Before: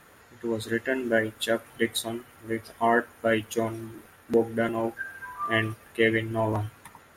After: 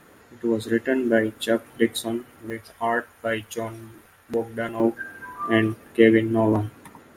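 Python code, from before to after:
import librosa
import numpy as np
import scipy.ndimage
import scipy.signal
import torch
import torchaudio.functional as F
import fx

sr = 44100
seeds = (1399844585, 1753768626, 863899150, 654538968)

y = fx.peak_eq(x, sr, hz=280.0, db=fx.steps((0.0, 8.0), (2.5, -4.5), (4.8, 12.0)), octaves=1.7)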